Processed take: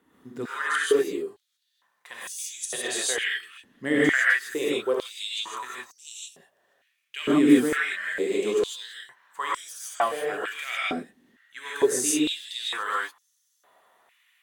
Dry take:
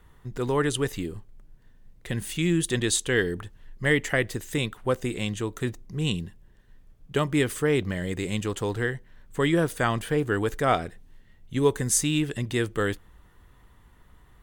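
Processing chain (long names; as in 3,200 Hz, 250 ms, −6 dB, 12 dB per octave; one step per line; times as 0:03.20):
reverb whose tail is shaped and stops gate 180 ms rising, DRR −6.5 dB
high-pass on a step sequencer 2.2 Hz 260–5,900 Hz
level −8 dB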